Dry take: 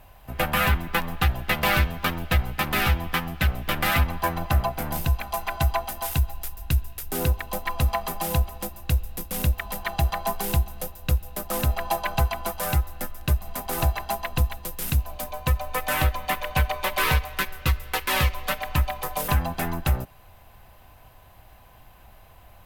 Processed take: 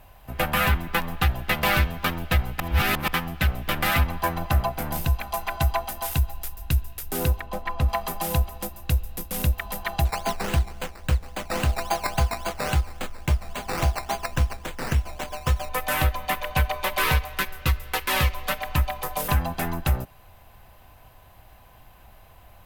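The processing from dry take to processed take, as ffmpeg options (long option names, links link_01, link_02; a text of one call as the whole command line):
ffmpeg -i in.wav -filter_complex "[0:a]asplit=3[link_01][link_02][link_03];[link_01]afade=type=out:start_time=7.39:duration=0.02[link_04];[link_02]lowpass=frequency=2300:poles=1,afade=type=in:start_time=7.39:duration=0.02,afade=type=out:start_time=7.88:duration=0.02[link_05];[link_03]afade=type=in:start_time=7.88:duration=0.02[link_06];[link_04][link_05][link_06]amix=inputs=3:normalize=0,asettb=1/sr,asplit=3[link_07][link_08][link_09];[link_07]atrim=end=10.054[link_10];[link_08]atrim=start=10.05:end=15.69,asetpts=PTS-STARTPTS,afade=type=in:duration=0.004:curve=qsin,afade=type=out:start_time=5.636:duration=0.004:curve=qsin,acrusher=samples=11:mix=1:aa=0.000001:lfo=1:lforange=6.6:lforate=3.6[link_11];[link_09]atrim=start=15.686[link_12];[link_10][link_11]acrossfade=duration=0.004:curve1=hsin:curve2=qsin[link_13];[link_13][link_12]acrossfade=duration=0.004:curve1=qsin:curve2=hsin,asplit=3[link_14][link_15][link_16];[link_14]atrim=end=2.602[link_17];[link_15]atrim=start=2.598:end=3.082,asetpts=PTS-STARTPTS,areverse[link_18];[link_16]atrim=start=3.078[link_19];[link_17][link_18]acrossfade=duration=0.004:curve1=hsin:curve2=hsin[link_20];[link_20][link_19]acrossfade=duration=0.004:curve1=hsin:curve2=hsin" out.wav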